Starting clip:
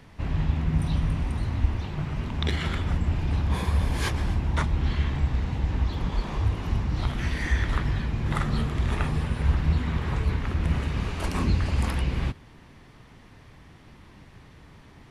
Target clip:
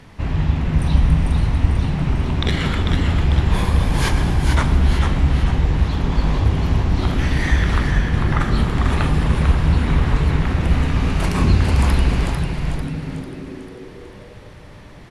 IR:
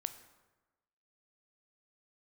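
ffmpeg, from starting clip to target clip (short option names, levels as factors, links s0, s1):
-filter_complex "[0:a]asplit=3[s0][s1][s2];[s0]afade=t=out:st=7.9:d=0.02[s3];[s1]lowpass=2600,afade=t=in:st=7.9:d=0.02,afade=t=out:st=8.39:d=0.02[s4];[s2]afade=t=in:st=8.39:d=0.02[s5];[s3][s4][s5]amix=inputs=3:normalize=0,asplit=7[s6][s7][s8][s9][s10][s11][s12];[s7]adelay=446,afreqshift=-110,volume=0.596[s13];[s8]adelay=892,afreqshift=-220,volume=0.292[s14];[s9]adelay=1338,afreqshift=-330,volume=0.143[s15];[s10]adelay=1784,afreqshift=-440,volume=0.07[s16];[s11]adelay=2230,afreqshift=-550,volume=0.0343[s17];[s12]adelay=2676,afreqshift=-660,volume=0.0168[s18];[s6][s13][s14][s15][s16][s17][s18]amix=inputs=7:normalize=0[s19];[1:a]atrim=start_sample=2205,asetrate=23814,aresample=44100[s20];[s19][s20]afir=irnorm=-1:irlink=0,volume=1.78"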